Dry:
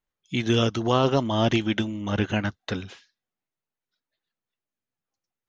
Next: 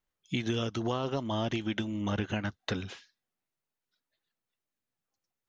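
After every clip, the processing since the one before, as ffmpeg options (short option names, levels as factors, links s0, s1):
-af "acompressor=threshold=0.0398:ratio=6"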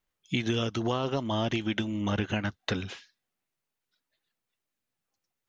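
-af "equalizer=f=2500:w=1.5:g=2,volume=1.33"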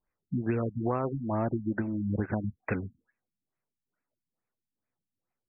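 -af "afftfilt=real='re*lt(b*sr/1024,250*pow(2700/250,0.5+0.5*sin(2*PI*2.3*pts/sr)))':imag='im*lt(b*sr/1024,250*pow(2700/250,0.5+0.5*sin(2*PI*2.3*pts/sr)))':win_size=1024:overlap=0.75"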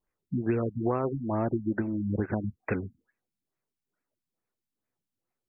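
-af "equalizer=f=380:t=o:w=0.69:g=4"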